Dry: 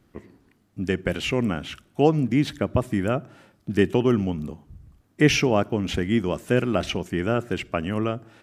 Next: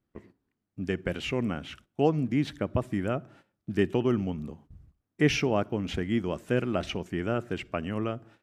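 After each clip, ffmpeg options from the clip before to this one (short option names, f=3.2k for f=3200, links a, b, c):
-af "agate=range=-14dB:threshold=-47dB:ratio=16:detection=peak,highshelf=f=6.8k:g=-7,volume=-5.5dB"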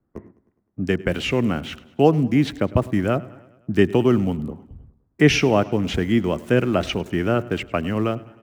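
-filter_complex "[0:a]acrossover=split=180|790|1600[a][b][c][d];[d]aeval=exprs='val(0)*gte(abs(val(0)),0.00188)':c=same[e];[a][b][c][e]amix=inputs=4:normalize=0,aecho=1:1:103|206|309|412|515:0.0841|0.0496|0.0293|0.0173|0.0102,volume=8.5dB"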